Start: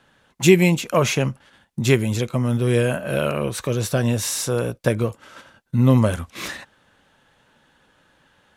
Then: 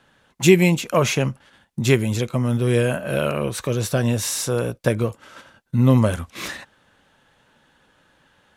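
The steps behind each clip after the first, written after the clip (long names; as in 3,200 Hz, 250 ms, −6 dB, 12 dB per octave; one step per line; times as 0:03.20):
no processing that can be heard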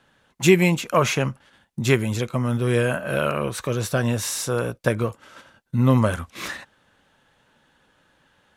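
dynamic equaliser 1,300 Hz, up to +6 dB, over −37 dBFS, Q 1.1
level −2.5 dB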